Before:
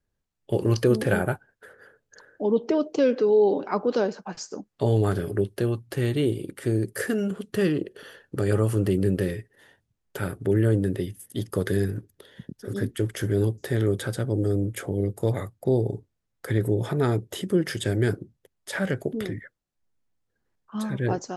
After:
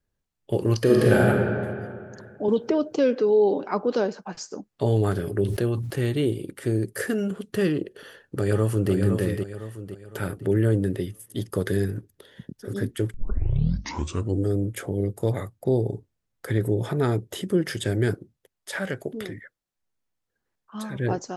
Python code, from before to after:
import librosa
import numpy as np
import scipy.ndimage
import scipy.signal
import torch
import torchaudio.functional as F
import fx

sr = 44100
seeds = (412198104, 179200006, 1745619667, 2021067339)

y = fx.reverb_throw(x, sr, start_s=0.77, length_s=0.51, rt60_s=2.2, drr_db=-3.0)
y = fx.band_squash(y, sr, depth_pct=100, at=(2.48, 2.95))
y = fx.sustainer(y, sr, db_per_s=49.0, at=(5.23, 6.02))
y = fx.echo_throw(y, sr, start_s=7.96, length_s=0.96, ms=510, feedback_pct=40, wet_db=-6.0)
y = fx.low_shelf(y, sr, hz=370.0, db=-6.5, at=(18.14, 20.96))
y = fx.edit(y, sr, fx.tape_start(start_s=13.14, length_s=1.32), tone=tone)